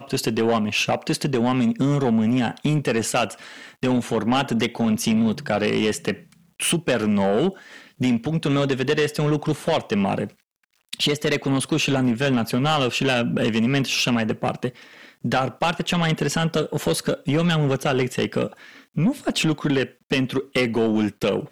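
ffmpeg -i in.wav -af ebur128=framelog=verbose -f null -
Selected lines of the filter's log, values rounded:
Integrated loudness:
  I:         -22.2 LUFS
  Threshold: -32.5 LUFS
Loudness range:
  LRA:         2.0 LU
  Threshold: -42.5 LUFS
  LRA low:   -23.3 LUFS
  LRA high:  -21.3 LUFS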